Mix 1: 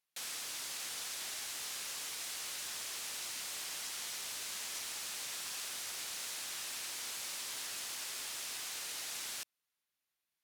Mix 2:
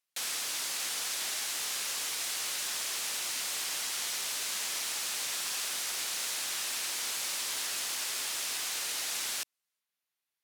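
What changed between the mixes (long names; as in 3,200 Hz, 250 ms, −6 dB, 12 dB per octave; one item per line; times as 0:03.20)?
background +7.5 dB
master: add low-shelf EQ 120 Hz −9.5 dB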